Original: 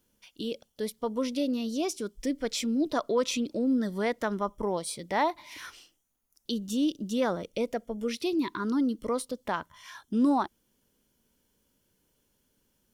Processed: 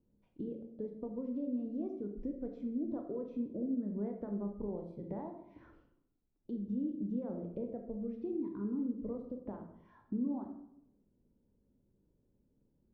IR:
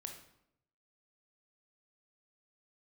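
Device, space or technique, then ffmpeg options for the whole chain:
television next door: -filter_complex "[0:a]acompressor=threshold=0.0158:ratio=4,lowpass=400[s0];[1:a]atrim=start_sample=2205[s1];[s0][s1]afir=irnorm=-1:irlink=0,volume=1.88"

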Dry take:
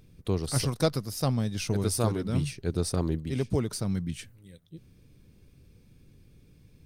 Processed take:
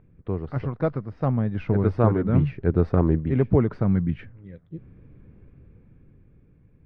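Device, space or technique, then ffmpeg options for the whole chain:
action camera in a waterproof case: -af "lowpass=f=1900:w=0.5412,lowpass=f=1900:w=1.3066,dynaudnorm=f=330:g=9:m=2.66" -ar 22050 -c:a aac -b:a 96k

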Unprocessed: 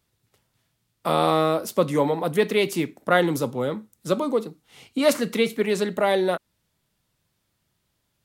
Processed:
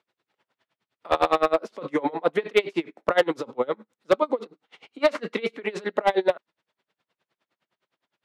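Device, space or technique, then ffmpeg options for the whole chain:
helicopter radio: -af "highpass=390,lowpass=2900,aeval=exprs='val(0)*pow(10,-29*(0.5-0.5*cos(2*PI*9.7*n/s))/20)':c=same,asoftclip=type=hard:threshold=0.119,volume=2.51"

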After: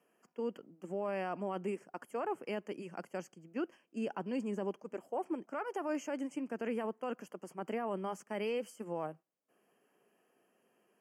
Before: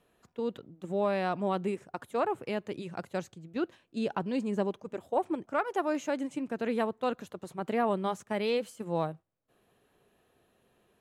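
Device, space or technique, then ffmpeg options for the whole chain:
PA system with an anti-feedback notch: -af "highpass=f=190:w=0.5412,highpass=f=190:w=1.3066,asuperstop=centerf=3800:order=20:qfactor=3.1,alimiter=limit=0.0631:level=0:latency=1:release=12,volume=0.631"

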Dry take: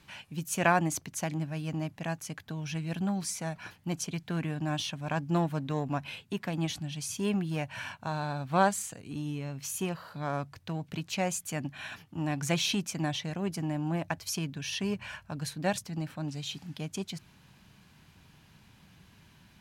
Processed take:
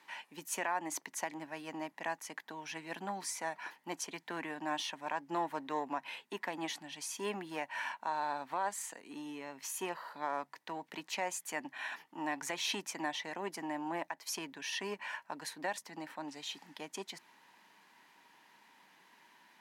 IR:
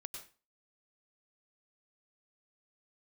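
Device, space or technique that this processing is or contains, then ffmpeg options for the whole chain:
laptop speaker: -af "highpass=f=280:w=0.5412,highpass=f=280:w=1.3066,equalizer=f=930:t=o:w=0.42:g=11.5,equalizer=f=1900:t=o:w=0.29:g=10.5,alimiter=limit=0.1:level=0:latency=1:release=193,volume=0.596"

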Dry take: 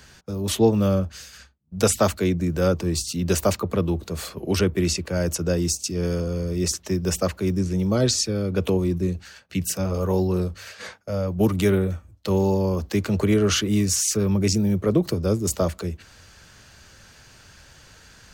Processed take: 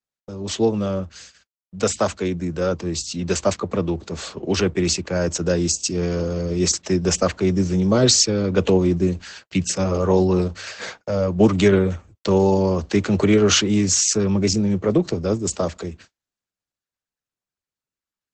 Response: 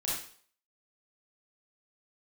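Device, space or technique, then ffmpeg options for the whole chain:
video call: -af "highpass=f=150:p=1,dynaudnorm=f=410:g=21:m=3.35,agate=range=0.00355:threshold=0.00708:ratio=16:detection=peak" -ar 48000 -c:a libopus -b:a 12k

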